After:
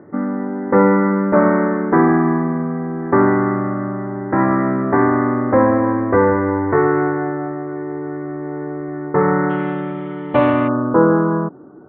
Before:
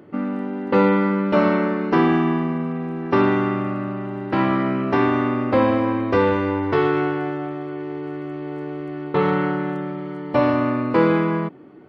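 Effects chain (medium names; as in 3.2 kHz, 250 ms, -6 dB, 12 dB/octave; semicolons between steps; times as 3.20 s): elliptic low-pass 1.9 kHz, stop band 40 dB, from 9.49 s 3.5 kHz, from 10.67 s 1.5 kHz; trim +4.5 dB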